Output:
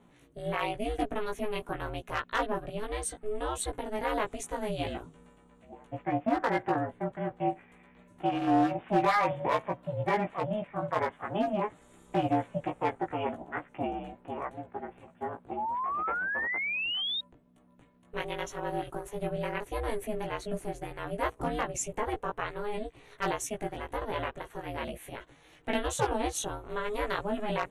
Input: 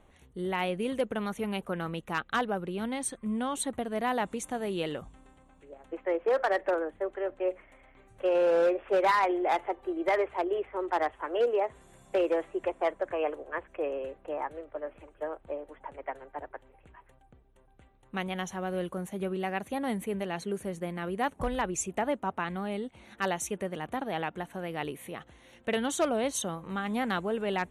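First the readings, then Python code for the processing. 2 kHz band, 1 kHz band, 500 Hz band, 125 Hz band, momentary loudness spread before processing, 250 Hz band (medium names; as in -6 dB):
+1.0 dB, +1.0 dB, -4.0 dB, +3.0 dB, 12 LU, -0.5 dB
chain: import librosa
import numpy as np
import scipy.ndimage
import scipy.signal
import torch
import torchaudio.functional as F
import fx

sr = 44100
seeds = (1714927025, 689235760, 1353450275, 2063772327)

y = x * np.sin(2.0 * np.pi * 210.0 * np.arange(len(x)) / sr)
y = fx.doubler(y, sr, ms=17.0, db=-3.0)
y = fx.spec_paint(y, sr, seeds[0], shape='rise', start_s=15.57, length_s=1.64, low_hz=820.0, high_hz=3800.0, level_db=-32.0)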